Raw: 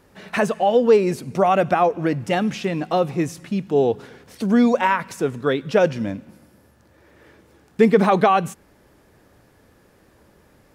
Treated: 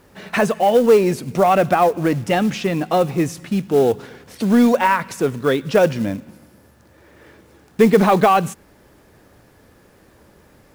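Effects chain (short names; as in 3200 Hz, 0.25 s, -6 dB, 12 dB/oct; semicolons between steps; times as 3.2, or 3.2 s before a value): in parallel at -5 dB: soft clip -16.5 dBFS, distortion -10 dB; on the sum: companded quantiser 6-bit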